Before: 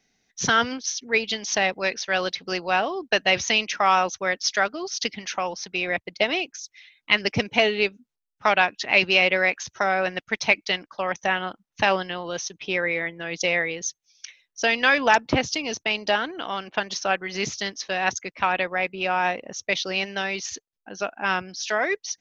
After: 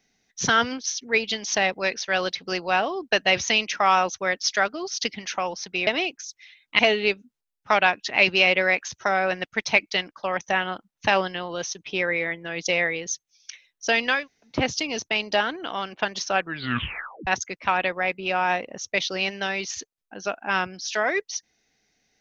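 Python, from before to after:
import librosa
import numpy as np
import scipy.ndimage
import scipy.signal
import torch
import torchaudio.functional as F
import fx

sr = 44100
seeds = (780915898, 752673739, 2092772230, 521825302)

y = fx.edit(x, sr, fx.cut(start_s=5.87, length_s=0.35),
    fx.cut(start_s=7.14, length_s=0.4),
    fx.room_tone_fill(start_s=14.91, length_s=0.38, crossfade_s=0.24),
    fx.tape_stop(start_s=17.14, length_s=0.88), tone=tone)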